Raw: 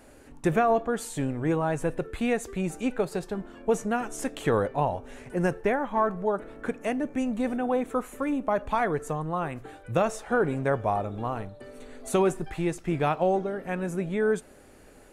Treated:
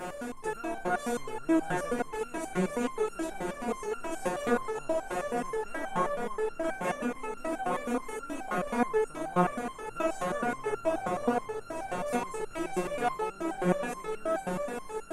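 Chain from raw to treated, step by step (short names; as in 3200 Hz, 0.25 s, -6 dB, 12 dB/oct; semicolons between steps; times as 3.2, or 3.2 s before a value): per-bin compression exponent 0.4; swelling echo 0.126 s, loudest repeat 5, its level -14.5 dB; stepped resonator 9.4 Hz 180–1400 Hz; gain +4 dB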